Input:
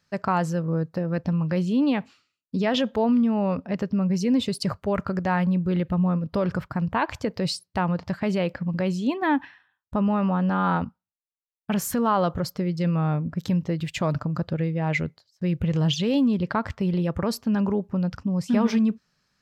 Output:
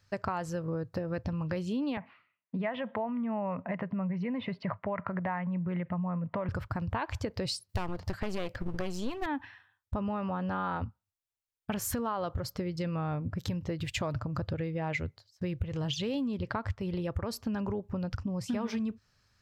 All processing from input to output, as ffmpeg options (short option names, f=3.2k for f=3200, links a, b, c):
-filter_complex "[0:a]asettb=1/sr,asplit=3[a][b][c];[a]atrim=end=1.974[d];[b]atrim=start=1.97:end=6.49,asetpts=PTS-STARTPTS,afade=t=in:d=0.004:c=qsin,afade=t=out:st=4.516:d=0.004:c=qsin,acompressor=threshold=-28dB:ratio=2:attack=3.2:release=140:knee=1:detection=peak,highpass=f=150:w=0.5412,highpass=f=150:w=1.3066,equalizer=f=170:t=q:w=4:g=8,equalizer=f=290:t=q:w=4:g=-5,equalizer=f=420:t=q:w=4:g=-5,equalizer=f=660:t=q:w=4:g=6,equalizer=f=1k:t=q:w=4:g=8,equalizer=f=2k:t=q:w=4:g=9,lowpass=f=2.6k:w=0.5412,lowpass=f=2.6k:w=1.3066[e];[c]atrim=start=6.486[f];[d][e]acrossfade=d=0.004:c1=hsin:c2=qsin[g];[g][f]acrossfade=d=0.004:c1=qsin:c2=hsin,asettb=1/sr,asplit=3[h][i][j];[h]atrim=end=7.694[k];[i]atrim=start=7.69:end=9.26,asetpts=PTS-STARTPTS,afade=t=in:d=0.004:c=qsin,afade=t=out:st=1.566:d=0.004:c=qsin,highshelf=f=6.5k:g=8,acontrast=31,aeval=exprs='clip(val(0),-1,0.0447)':c=same[l];[j]atrim=start=9.256[m];[k][l]acrossfade=d=0.004:c1=hsin:c2=qsin[n];[n][m]acrossfade=d=0.004:c1=qsin:c2=hsin,lowshelf=f=130:t=q:w=3:g=7,acompressor=threshold=-30dB:ratio=6"